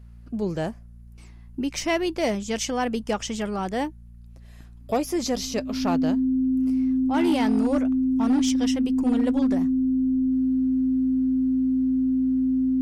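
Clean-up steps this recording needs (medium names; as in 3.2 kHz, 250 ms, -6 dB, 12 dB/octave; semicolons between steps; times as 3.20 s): clip repair -16 dBFS; de-hum 58.2 Hz, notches 4; band-stop 260 Hz, Q 30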